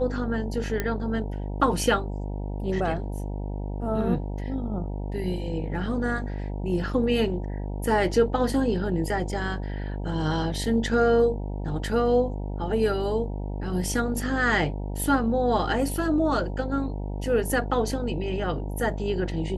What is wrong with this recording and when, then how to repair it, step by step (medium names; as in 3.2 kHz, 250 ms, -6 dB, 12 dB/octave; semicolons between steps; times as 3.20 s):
buzz 50 Hz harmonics 19 -31 dBFS
0.80 s: pop -12 dBFS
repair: de-click; de-hum 50 Hz, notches 19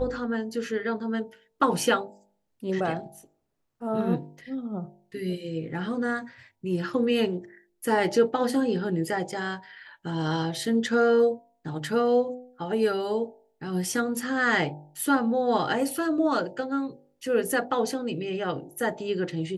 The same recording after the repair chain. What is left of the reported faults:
nothing left